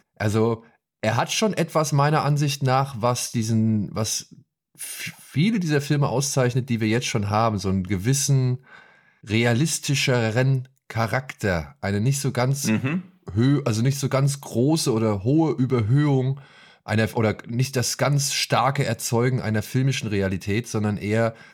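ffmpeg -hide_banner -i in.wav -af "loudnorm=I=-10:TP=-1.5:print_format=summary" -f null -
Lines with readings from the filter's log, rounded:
Input Integrated:    -22.8 LUFS
Input True Peak:      -6.9 dBTP
Input LRA:             1.9 LU
Input Threshold:     -33.1 LUFS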